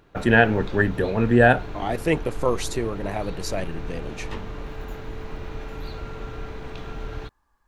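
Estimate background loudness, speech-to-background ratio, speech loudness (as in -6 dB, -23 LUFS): -37.0 LUFS, 15.0 dB, -22.0 LUFS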